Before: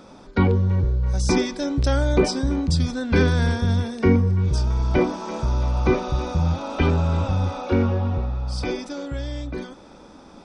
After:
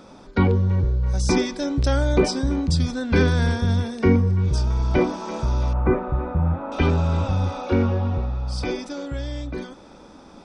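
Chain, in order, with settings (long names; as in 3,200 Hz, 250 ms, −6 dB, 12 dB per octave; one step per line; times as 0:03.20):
0:05.73–0:06.72: Chebyshev low-pass filter 1,800 Hz, order 3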